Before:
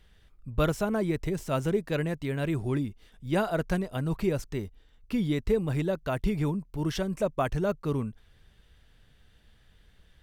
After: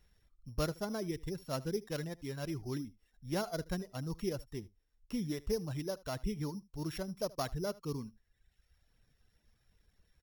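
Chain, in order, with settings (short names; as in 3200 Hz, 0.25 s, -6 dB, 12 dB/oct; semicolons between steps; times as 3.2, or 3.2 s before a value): sample sorter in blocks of 8 samples; reverb removal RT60 1 s; echo 77 ms -21.5 dB; gain -8.5 dB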